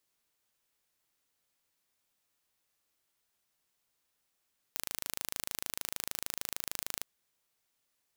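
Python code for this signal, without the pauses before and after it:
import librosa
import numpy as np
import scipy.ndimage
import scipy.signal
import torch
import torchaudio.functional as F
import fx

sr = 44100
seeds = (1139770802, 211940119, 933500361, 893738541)

y = 10.0 ** (-8.0 / 20.0) * (np.mod(np.arange(round(2.27 * sr)), round(sr / 26.6)) == 0)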